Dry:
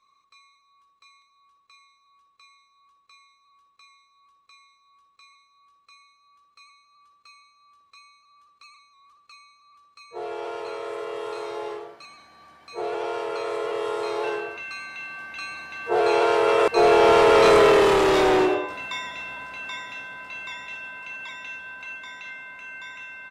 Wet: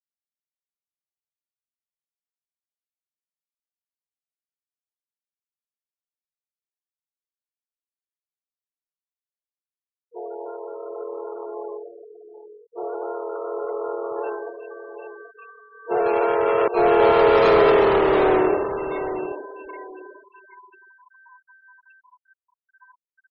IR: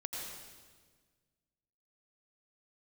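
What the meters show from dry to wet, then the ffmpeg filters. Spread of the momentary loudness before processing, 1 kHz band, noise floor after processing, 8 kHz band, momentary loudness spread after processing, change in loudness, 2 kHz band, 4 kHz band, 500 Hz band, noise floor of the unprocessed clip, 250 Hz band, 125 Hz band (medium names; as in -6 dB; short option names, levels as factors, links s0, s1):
22 LU, 0.0 dB, under -85 dBFS, under -25 dB, 23 LU, +2.5 dB, -3.5 dB, -7.0 dB, +0.5 dB, -64 dBFS, +1.0 dB, +1.0 dB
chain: -filter_complex "[0:a]aemphasis=mode=reproduction:type=cd,asplit=2[s0][s1];[s1]adelay=781,lowpass=f=2700:p=1,volume=0.355,asplit=2[s2][s3];[s3]adelay=781,lowpass=f=2700:p=1,volume=0.27,asplit=2[s4][s5];[s5]adelay=781,lowpass=f=2700:p=1,volume=0.27[s6];[s0][s2][s4][s6]amix=inputs=4:normalize=0,adynamicsmooth=sensitivity=1.5:basefreq=880,afftfilt=real='re*gte(hypot(re,im),0.0316)':imag='im*gte(hypot(re,im),0.0316)':win_size=1024:overlap=0.75"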